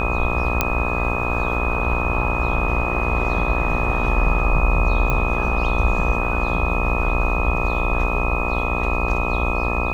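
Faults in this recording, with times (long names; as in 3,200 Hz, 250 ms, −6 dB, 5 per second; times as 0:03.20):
mains buzz 60 Hz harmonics 22 −25 dBFS
whistle 2,500 Hz −25 dBFS
0:00.61: click −2 dBFS
0:05.10: click −9 dBFS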